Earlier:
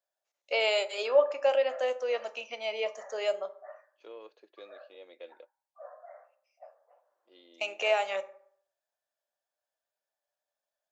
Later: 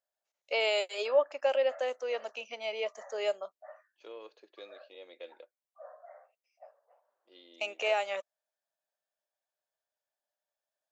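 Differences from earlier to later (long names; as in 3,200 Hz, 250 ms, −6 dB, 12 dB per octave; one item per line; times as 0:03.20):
second voice: add high-shelf EQ 3,500 Hz +7 dB
reverb: off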